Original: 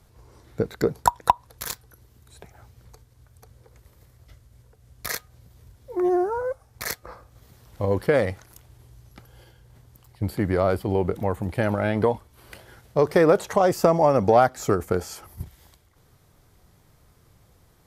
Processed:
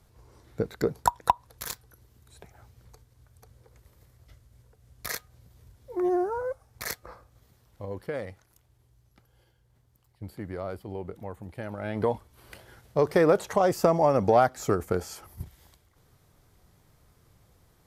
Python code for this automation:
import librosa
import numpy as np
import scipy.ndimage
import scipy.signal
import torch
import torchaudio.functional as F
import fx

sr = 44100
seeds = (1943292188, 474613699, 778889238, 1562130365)

y = fx.gain(x, sr, db=fx.line((7.06, -4.0), (7.89, -13.5), (11.71, -13.5), (12.12, -3.5)))